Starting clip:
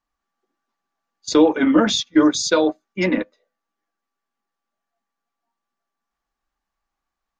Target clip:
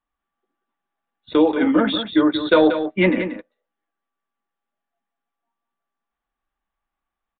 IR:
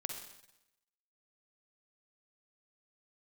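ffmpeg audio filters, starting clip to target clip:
-filter_complex "[0:a]asettb=1/sr,asplit=3[s0][s1][s2];[s0]atrim=end=2.344[s3];[s1]atrim=start=2.34:end=3.12,asetpts=PTS-STARTPTS,afade=t=in:d=0.004:c=qsin,afade=t=out:st=0.776:d=0.004:c=qsin,acontrast=66[s4];[s2]atrim=start=3.116[s5];[s3][s4]acrossfade=d=0.004:c1=hsin:c2=qsin[s6];[s6][s5]acrossfade=d=0.004:c1=qsin:c2=hsin,asplit=2[s7][s8];[s8]aecho=0:1:183:0.335[s9];[s7][s9]amix=inputs=2:normalize=0,aresample=8000,aresample=44100,volume=0.794"

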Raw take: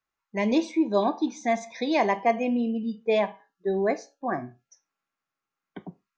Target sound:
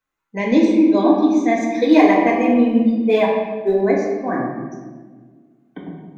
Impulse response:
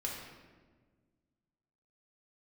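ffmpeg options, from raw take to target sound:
-filter_complex "[0:a]equalizer=f=160:t=o:w=0.33:g=7,equalizer=f=315:t=o:w=0.33:g=7,equalizer=f=5000:t=o:w=0.33:g=-6,asplit=3[s0][s1][s2];[s0]afade=t=out:st=1.56:d=0.02[s3];[s1]aphaser=in_gain=1:out_gain=1:delay=3.5:decay=0.56:speed=1.8:type=triangular,afade=t=in:st=1.56:d=0.02,afade=t=out:st=3.8:d=0.02[s4];[s2]afade=t=in:st=3.8:d=0.02[s5];[s3][s4][s5]amix=inputs=3:normalize=0[s6];[1:a]atrim=start_sample=2205[s7];[s6][s7]afir=irnorm=-1:irlink=0,volume=1.68"

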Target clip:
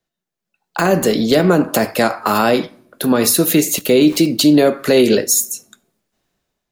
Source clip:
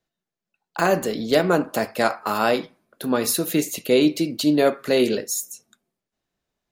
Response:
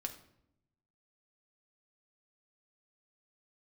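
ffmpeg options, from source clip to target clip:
-filter_complex "[0:a]asettb=1/sr,asplit=3[s0][s1][s2];[s0]atrim=end=3.764[s3];[s1]atrim=start=3.76:end=4.26,asetpts=PTS-STARTPTS,afade=t=in:d=0.004:c=qsin,afade=t=out:st=0.496:d=0.004:c=qsin,aeval=exprs='val(0)*gte(abs(val(0)),0.0112)':c=same[s4];[s2]atrim=start=4.256[s5];[s3][s4]acrossfade=d=0.004:c1=hsin:c2=qsin[s6];[s6][s5]acrossfade=d=0.004:c1=qsin:c2=hsin,acrossover=split=360[s7][s8];[s8]acompressor=threshold=0.0794:ratio=6[s9];[s7][s9]amix=inputs=2:normalize=0,alimiter=limit=0.2:level=0:latency=1:release=80,asplit=2[s10][s11];[1:a]atrim=start_sample=2205,highshelf=f=4500:g=11.5[s12];[s11][s12]afir=irnorm=-1:irlink=0,volume=0.188[s13];[s10][s13]amix=inputs=2:normalize=0,dynaudnorm=f=260:g=5:m=4.22"

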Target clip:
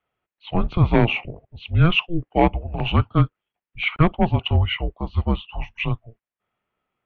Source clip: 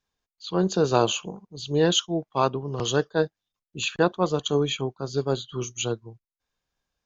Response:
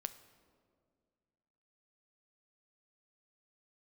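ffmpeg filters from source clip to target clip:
-af "volume=3.98,asoftclip=hard,volume=0.251,highpass=f=350:t=q:w=0.5412,highpass=f=350:t=q:w=1.307,lowpass=f=3100:t=q:w=0.5176,lowpass=f=3100:t=q:w=0.7071,lowpass=f=3100:t=q:w=1.932,afreqshift=-340,volume=2.37"

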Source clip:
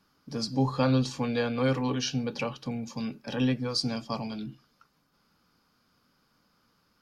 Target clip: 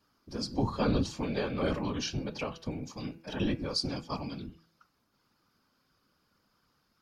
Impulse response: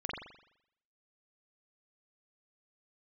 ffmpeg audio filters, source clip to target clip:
-af "afftfilt=real='hypot(re,im)*cos(2*PI*random(0))':imag='hypot(re,im)*sin(2*PI*random(1))':win_size=512:overlap=0.75,bandreject=f=164.6:t=h:w=4,bandreject=f=329.2:t=h:w=4,bandreject=f=493.8:t=h:w=4,bandreject=f=658.4:t=h:w=4,bandreject=f=823:t=h:w=4,bandreject=f=987.6:t=h:w=4,bandreject=f=1152.2:t=h:w=4,bandreject=f=1316.8:t=h:w=4,bandreject=f=1481.4:t=h:w=4,bandreject=f=1646:t=h:w=4,bandreject=f=1810.6:t=h:w=4,bandreject=f=1975.2:t=h:w=4,bandreject=f=2139.8:t=h:w=4,bandreject=f=2304.4:t=h:w=4,bandreject=f=2469:t=h:w=4,bandreject=f=2633.6:t=h:w=4,bandreject=f=2798.2:t=h:w=4,volume=1.33"

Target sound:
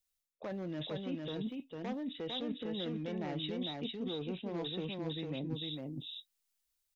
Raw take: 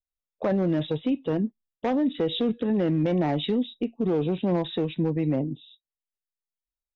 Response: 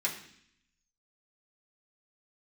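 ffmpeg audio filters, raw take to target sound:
-af "highshelf=f=2100:g=11.5,areverse,acompressor=threshold=0.0126:ratio=16,areverse,aecho=1:1:452:0.708,volume=1.12"

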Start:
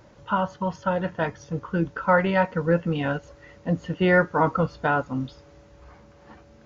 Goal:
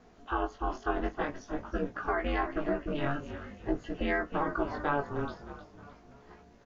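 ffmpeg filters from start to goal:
-filter_complex "[0:a]asplit=2[s0][s1];[s1]asplit=4[s2][s3][s4][s5];[s2]adelay=309,afreqshift=-49,volume=0.251[s6];[s3]adelay=618,afreqshift=-98,volume=0.108[s7];[s4]adelay=927,afreqshift=-147,volume=0.0462[s8];[s5]adelay=1236,afreqshift=-196,volume=0.02[s9];[s6][s7][s8][s9]amix=inputs=4:normalize=0[s10];[s0][s10]amix=inputs=2:normalize=0,alimiter=limit=0.188:level=0:latency=1:release=175,aeval=exprs='val(0)*sin(2*PI*140*n/s)':c=same,flanger=delay=16.5:depth=5.2:speed=0.48"

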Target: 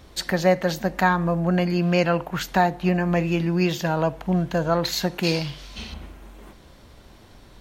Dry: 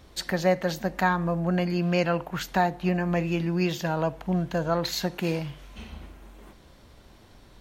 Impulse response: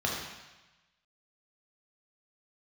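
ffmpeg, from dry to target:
-filter_complex "[0:a]asettb=1/sr,asplit=3[s0][s1][s2];[s0]atrim=end=5.234[s3];[s1]atrim=start=5.23:end=5.94,asetpts=PTS-STARTPTS,afade=t=in:d=0.004:c=qsin,afade=t=out:st=0.706:d=0.004:c=qsin,equalizer=f=4600:t=o:w=1.1:g=13.5[s4];[s2]atrim=start=5.936[s5];[s3][s4]acrossfade=d=0.004:c1=hsin:c2=qsin[s6];[s6][s5]acrossfade=d=0.004:c1=qsin:c2=hsin,volume=1.58"

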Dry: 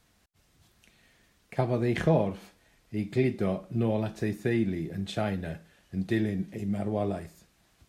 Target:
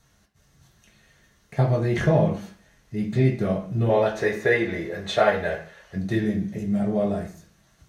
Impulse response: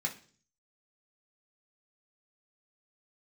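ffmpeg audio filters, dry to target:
-filter_complex "[0:a]asettb=1/sr,asplit=3[s0][s1][s2];[s0]atrim=end=3.894[s3];[s1]atrim=start=3.89:end=5.96,asetpts=PTS-STARTPTS,afade=t=in:d=0.004:c=qsin,afade=t=out:st=2.066:d=0.004:c=qsin,equalizer=f=125:t=o:w=1:g=-9,equalizer=f=250:t=o:w=1:g=-8,equalizer=f=500:t=o:w=1:g=11,equalizer=f=1000:t=o:w=1:g=7,equalizer=f=2000:t=o:w=1:g=8,equalizer=f=4000:t=o:w=1:g=4[s4];[s2]atrim=start=5.956[s5];[s3][s4]acrossfade=d=0.004:c1=hsin:c2=qsin[s6];[s6][s5]acrossfade=d=0.004:c1=qsin:c2=hsin[s7];[1:a]atrim=start_sample=2205,afade=t=out:st=0.24:d=0.01,atrim=end_sample=11025,asetrate=35280,aresample=44100[s8];[s7][s8]afir=irnorm=-1:irlink=0"

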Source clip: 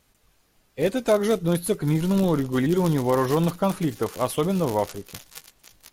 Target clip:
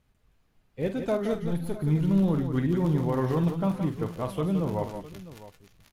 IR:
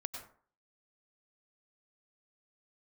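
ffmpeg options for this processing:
-filter_complex "[0:a]asettb=1/sr,asplit=3[s0][s1][s2];[s0]atrim=end=1.334[s3];[s1]atrim=start=1.33:end=1.79,asetpts=PTS-STARTPTS,afade=t=in:d=0.004:c=qsin,afade=t=out:st=0.456:d=0.004:c=qsin,aeval=exprs='(tanh(7.94*val(0)+0.45)-tanh(0.45))/7.94':c=same[s4];[s2]atrim=start=1.786[s5];[s3][s4]acrossfade=d=0.004:c1=hsin:c2=qsin[s6];[s6][s5]acrossfade=d=0.004:c1=qsin:c2=hsin,bass=f=250:g=8,treble=f=4000:g=-9,asplit=2[s7][s8];[s8]aecho=0:1:46|170|183|657:0.316|0.376|0.112|0.15[s9];[s7][s9]amix=inputs=2:normalize=0,volume=0.376"

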